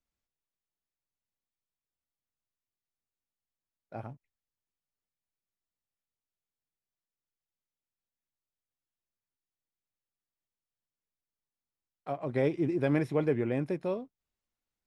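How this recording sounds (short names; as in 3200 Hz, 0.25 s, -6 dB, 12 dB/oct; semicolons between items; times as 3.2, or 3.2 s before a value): noise floor -94 dBFS; spectral tilt -6.0 dB/oct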